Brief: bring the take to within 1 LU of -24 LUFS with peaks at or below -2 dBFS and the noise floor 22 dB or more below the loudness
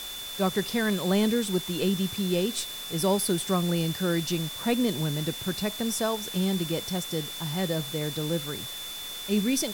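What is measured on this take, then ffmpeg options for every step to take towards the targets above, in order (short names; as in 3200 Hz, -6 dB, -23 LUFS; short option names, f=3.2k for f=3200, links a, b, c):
steady tone 3500 Hz; tone level -37 dBFS; noise floor -38 dBFS; noise floor target -50 dBFS; loudness -28.0 LUFS; peak -13.0 dBFS; loudness target -24.0 LUFS
-> -af "bandreject=f=3.5k:w=30"
-af "afftdn=nr=12:nf=-38"
-af "volume=4dB"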